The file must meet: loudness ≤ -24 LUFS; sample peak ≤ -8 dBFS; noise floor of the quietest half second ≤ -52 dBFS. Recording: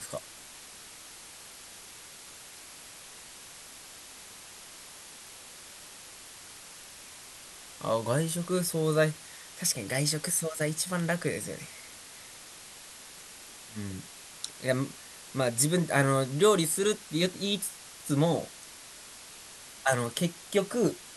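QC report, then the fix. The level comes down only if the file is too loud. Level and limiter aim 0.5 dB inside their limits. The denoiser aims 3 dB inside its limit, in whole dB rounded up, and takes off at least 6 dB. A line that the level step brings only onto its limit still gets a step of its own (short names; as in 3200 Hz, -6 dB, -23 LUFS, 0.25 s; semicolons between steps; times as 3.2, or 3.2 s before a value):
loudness -29.0 LUFS: OK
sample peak -9.0 dBFS: OK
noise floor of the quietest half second -48 dBFS: fail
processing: denoiser 7 dB, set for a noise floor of -48 dBFS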